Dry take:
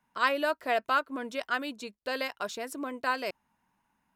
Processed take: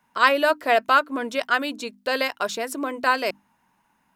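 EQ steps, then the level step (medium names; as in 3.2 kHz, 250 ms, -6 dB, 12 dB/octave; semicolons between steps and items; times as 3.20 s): bass shelf 100 Hz -6 dB; hum notches 50/100/150/200/250/300 Hz; +9.0 dB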